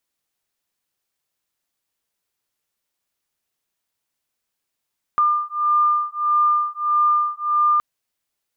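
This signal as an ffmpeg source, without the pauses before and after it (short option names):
-f lavfi -i "aevalsrc='0.112*(sin(2*PI*1200*t)+sin(2*PI*1201.6*t))':d=2.62:s=44100"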